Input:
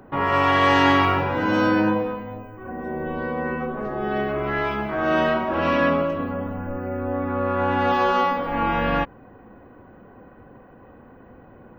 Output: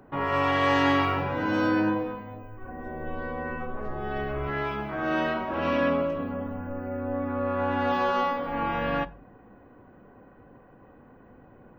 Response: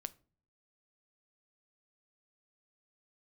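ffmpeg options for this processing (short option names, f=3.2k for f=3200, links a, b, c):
-filter_complex "[0:a]asplit=3[a][b][c];[a]afade=t=out:st=2.42:d=0.02[d];[b]asubboost=boost=6:cutoff=79,afade=t=in:st=2.42:d=0.02,afade=t=out:st=4.47:d=0.02[e];[c]afade=t=in:st=4.47:d=0.02[f];[d][e][f]amix=inputs=3:normalize=0[g];[1:a]atrim=start_sample=2205[h];[g][h]afir=irnorm=-1:irlink=0,volume=-2.5dB"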